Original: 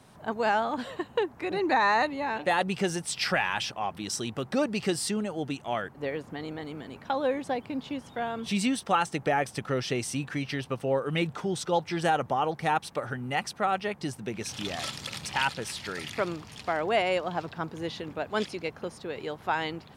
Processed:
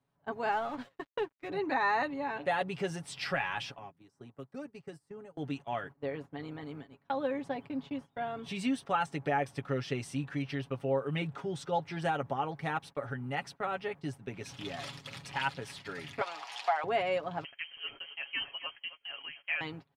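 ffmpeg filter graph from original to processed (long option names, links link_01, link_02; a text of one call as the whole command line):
ffmpeg -i in.wav -filter_complex "[0:a]asettb=1/sr,asplit=3[link_01][link_02][link_03];[link_01]atrim=end=0.524[link_04];[link_02]atrim=start=0.52:end=1.49,asetpts=PTS-STARTPTS,afade=type=in:duration=0.004:curve=qsin,afade=type=out:start_time=0.966:duration=0.004:curve=qsin,lowpass=12000,aeval=exprs='sgn(val(0))*max(abs(val(0))-0.0075,0)':channel_layout=same[link_05];[link_03]atrim=start=1.486[link_06];[link_04][link_05]acrossfade=duration=0.004:curve1=hsin:curve2=qsin[link_07];[link_07][link_06]acrossfade=duration=0.004:curve1=qsin:curve2=hsin,asettb=1/sr,asplit=3[link_08][link_09][link_10];[link_08]atrim=end=3.784[link_11];[link_09]atrim=start=3.78:end=5.37,asetpts=PTS-STARTPTS,afade=type=in:duration=0.004:curve=qsin,afade=type=out:start_time=1.586:duration=0.004:curve=qsin,equalizer=frequency=3400:width_type=o:width=1.2:gain=-11,acrossover=split=140|400|1800[link_12][link_13][link_14][link_15];[link_12]acompressor=threshold=-55dB:ratio=3[link_16];[link_13]acompressor=threshold=-44dB:ratio=3[link_17];[link_14]acompressor=threshold=-46dB:ratio=3[link_18];[link_15]acompressor=threshold=-50dB:ratio=3[link_19];[link_16][link_17][link_18][link_19]amix=inputs=4:normalize=0[link_20];[link_10]atrim=start=5.366[link_21];[link_11][link_20]acrossfade=duration=0.004:curve1=hsin:curve2=qsin[link_22];[link_22][link_21]acrossfade=duration=0.004:curve1=qsin:curve2=hsin,asettb=1/sr,asplit=3[link_23][link_24][link_25];[link_23]atrim=end=16.214[link_26];[link_24]atrim=start=16.21:end=16.84,asetpts=PTS-STARTPTS,afade=type=in:duration=0.004:curve=qsin,afade=type=out:start_time=0.626:duration=0.004:curve=qsin,equalizer=frequency=4200:width=0.31:gain=13.5,acompressor=threshold=-28dB:ratio=3:attack=3.2:release=140:knee=1:detection=peak,highpass=frequency=770:width_type=q:width=4.8[link_27];[link_25]atrim=start=16.836[link_28];[link_26][link_27]acrossfade=duration=0.004:curve1=hsin:curve2=qsin[link_29];[link_29][link_28]acrossfade=duration=0.004:curve1=qsin:curve2=hsin,asettb=1/sr,asplit=3[link_30][link_31][link_32];[link_30]atrim=end=17.444[link_33];[link_31]atrim=start=17.44:end=19.61,asetpts=PTS-STARTPTS,afade=type=in:duration=0.004:curve=qsin,afade=type=out:start_time=2.166:duration=0.004:curve=qsin,aecho=1:1:265:0.2,atrim=end_sample=95697,lowpass=frequency=2800:width_type=q:width=0.5098,lowpass=frequency=2800:width_type=q:width=0.6013,lowpass=frequency=2800:width_type=q:width=0.9,lowpass=frequency=2800:width_type=q:width=2.563,afreqshift=-3300[link_34];[link_32]atrim=start=19.606[link_35];[link_33][link_34]acrossfade=duration=0.004:curve1=hsin:curve2=qsin[link_36];[link_36][link_35]acrossfade=duration=0.004:curve1=qsin:curve2=hsin,agate=range=-20dB:threshold=-39dB:ratio=16:detection=peak,bass=frequency=250:gain=1,treble=frequency=4000:gain=-8,aecho=1:1:7.2:0.6,volume=-7dB" out.wav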